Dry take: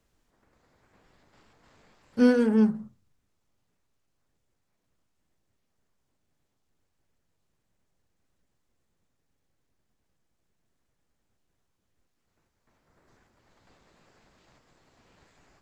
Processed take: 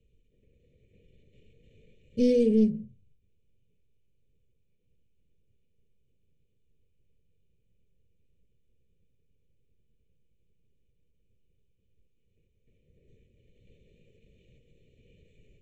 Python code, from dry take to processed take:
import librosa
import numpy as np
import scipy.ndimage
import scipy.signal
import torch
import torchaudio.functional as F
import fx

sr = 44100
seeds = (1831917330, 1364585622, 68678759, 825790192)

y = fx.wiener(x, sr, points=9)
y = 10.0 ** (-17.0 / 20.0) * np.tanh(y / 10.0 ** (-17.0 / 20.0))
y = scipy.signal.sosfilt(scipy.signal.ellip(3, 1.0, 40, [460.0, 2500.0], 'bandstop', fs=sr, output='sos'), y)
y = fx.air_absorb(y, sr, metres=55.0)
y = y + 0.58 * np.pad(y, (int(1.7 * sr / 1000.0), 0))[:len(y)]
y = fx.end_taper(y, sr, db_per_s=170.0)
y = y * 10.0 ** (4.5 / 20.0)